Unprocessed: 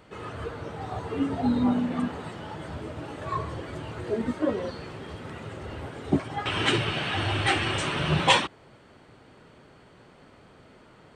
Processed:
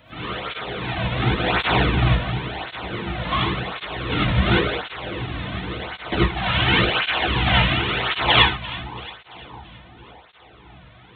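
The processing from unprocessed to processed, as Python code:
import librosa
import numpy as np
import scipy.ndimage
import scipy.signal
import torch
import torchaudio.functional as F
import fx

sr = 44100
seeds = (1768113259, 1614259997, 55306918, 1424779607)

p1 = fx.halfwave_hold(x, sr)
p2 = fx.lpc_vocoder(p1, sr, seeds[0], excitation='whisper', order=10)
p3 = fx.tilt_eq(p2, sr, slope=3.5)
p4 = fx.rev_gated(p3, sr, seeds[1], gate_ms=120, shape='rising', drr_db=-6.5)
p5 = fx.rider(p4, sr, range_db=4, speed_s=2.0)
p6 = p4 + (p5 * 10.0 ** (2.5 / 20.0))
p7 = fx.peak_eq(p6, sr, hz=62.0, db=14.5, octaves=2.4)
p8 = p7 + fx.echo_split(p7, sr, split_hz=1000.0, low_ms=580, high_ms=337, feedback_pct=52, wet_db=-16.0, dry=0)
p9 = fx.flanger_cancel(p8, sr, hz=0.92, depth_ms=2.7)
y = p9 * 10.0 ** (-8.0 / 20.0)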